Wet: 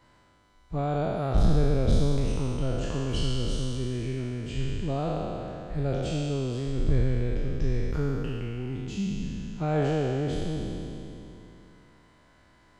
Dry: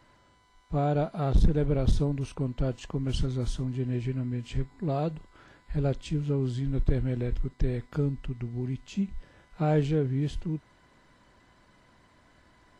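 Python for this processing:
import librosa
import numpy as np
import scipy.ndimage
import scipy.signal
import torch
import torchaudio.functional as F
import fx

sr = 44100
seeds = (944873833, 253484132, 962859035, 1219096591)

y = fx.spec_trails(x, sr, decay_s=2.98)
y = y * 10.0 ** (-3.0 / 20.0)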